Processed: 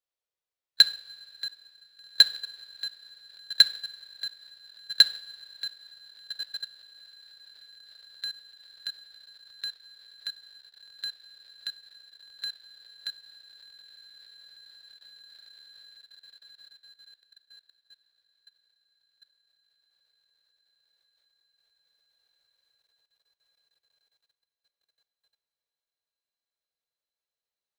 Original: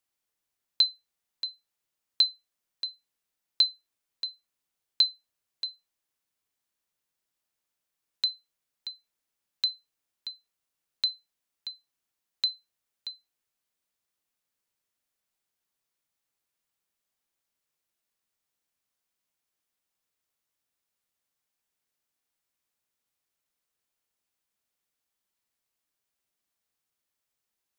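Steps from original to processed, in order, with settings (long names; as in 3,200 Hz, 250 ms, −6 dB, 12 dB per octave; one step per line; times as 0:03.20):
spectral magnitudes quantised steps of 15 dB
on a send: feedback delay with all-pass diffusion 1,611 ms, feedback 53%, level −11.5 dB
on the sum: output level in coarse steps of 20 dB
coupled-rooms reverb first 0.52 s, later 4 s, from −18 dB, DRR 12.5 dB
in parallel at −5 dB: sample-rate reduction 5,700 Hz, jitter 0%
on the sum: octave-band graphic EQ 250/500/4,000 Hz −11/+9/+9 dB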